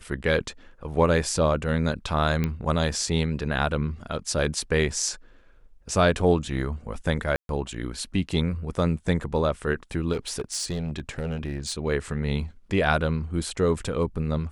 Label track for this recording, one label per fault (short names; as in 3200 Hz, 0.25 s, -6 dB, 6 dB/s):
2.440000	2.440000	pop -13 dBFS
7.360000	7.490000	gap 0.132 s
10.120000	11.730000	clipped -24 dBFS